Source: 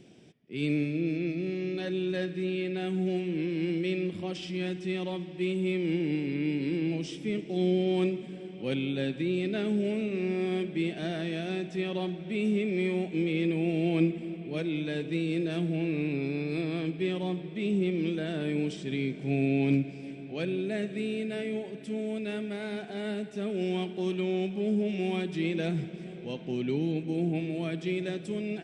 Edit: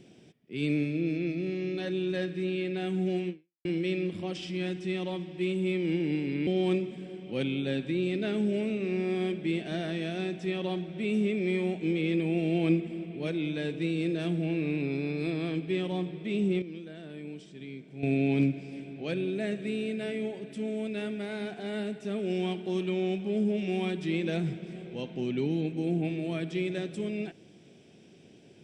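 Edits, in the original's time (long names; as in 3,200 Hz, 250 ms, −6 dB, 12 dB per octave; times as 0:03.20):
0:03.29–0:03.65: fade out exponential
0:06.47–0:07.78: remove
0:17.93–0:19.34: clip gain −11.5 dB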